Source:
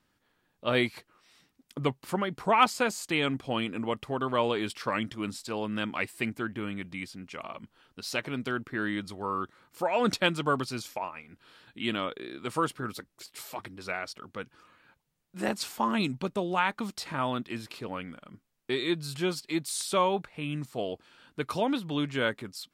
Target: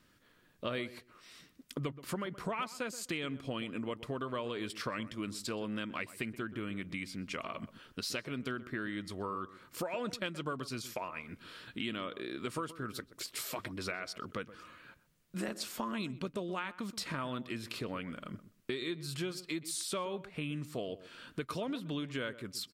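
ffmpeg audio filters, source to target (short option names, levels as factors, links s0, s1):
-filter_complex "[0:a]equalizer=f=820:t=o:w=0.29:g=-11.5,acompressor=threshold=0.00794:ratio=6,asplit=2[s0][s1];[s1]adelay=126,lowpass=f=1200:p=1,volume=0.2,asplit=2[s2][s3];[s3]adelay=126,lowpass=f=1200:p=1,volume=0.17[s4];[s0][s2][s4]amix=inputs=3:normalize=0,volume=2"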